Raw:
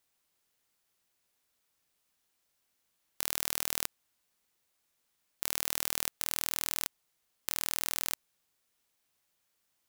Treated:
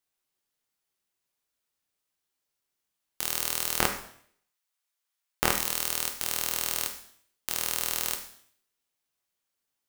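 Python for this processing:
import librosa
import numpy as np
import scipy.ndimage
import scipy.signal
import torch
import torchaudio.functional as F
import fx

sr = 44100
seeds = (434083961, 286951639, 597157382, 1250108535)

y = fx.highpass(x, sr, hz=810.0, slope=12, at=(3.78, 5.5), fade=0.02)
y = fx.leveller(y, sr, passes=5)
y = fx.rev_plate(y, sr, seeds[0], rt60_s=0.61, hf_ratio=1.0, predelay_ms=0, drr_db=4.0)
y = y * 10.0 ** (2.5 / 20.0)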